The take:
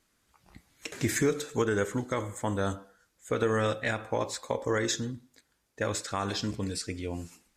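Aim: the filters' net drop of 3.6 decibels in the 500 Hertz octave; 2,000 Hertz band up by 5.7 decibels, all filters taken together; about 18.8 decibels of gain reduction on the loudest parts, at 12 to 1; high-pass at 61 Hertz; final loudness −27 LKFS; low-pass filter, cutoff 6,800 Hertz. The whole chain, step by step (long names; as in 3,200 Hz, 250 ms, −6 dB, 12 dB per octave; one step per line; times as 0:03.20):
high-pass filter 61 Hz
low-pass filter 6,800 Hz
parametric band 500 Hz −4.5 dB
parametric band 2,000 Hz +7.5 dB
downward compressor 12 to 1, threshold −42 dBFS
level +20 dB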